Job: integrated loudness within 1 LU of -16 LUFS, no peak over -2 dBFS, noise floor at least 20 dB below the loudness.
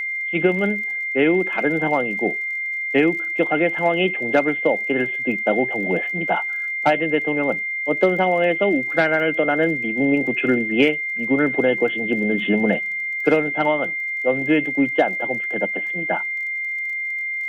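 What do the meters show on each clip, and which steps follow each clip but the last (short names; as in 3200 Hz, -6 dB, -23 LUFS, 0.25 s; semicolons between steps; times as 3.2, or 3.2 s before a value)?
ticks 28/s; steady tone 2100 Hz; tone level -23 dBFS; loudness -20.0 LUFS; peak -4.0 dBFS; loudness target -16.0 LUFS
-> de-click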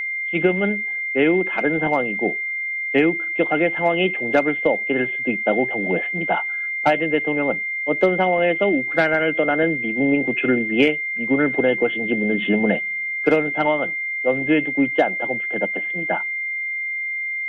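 ticks 0/s; steady tone 2100 Hz; tone level -23 dBFS
-> notch 2100 Hz, Q 30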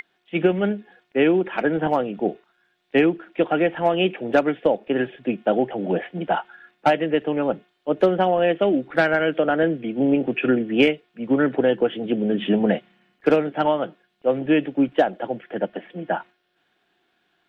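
steady tone none; loudness -22.0 LUFS; peak -5.0 dBFS; loudness target -16.0 LUFS
-> gain +6 dB; limiter -2 dBFS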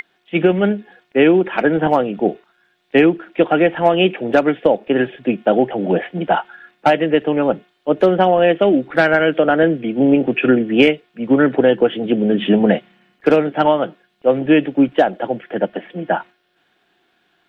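loudness -16.5 LUFS; peak -2.0 dBFS; noise floor -63 dBFS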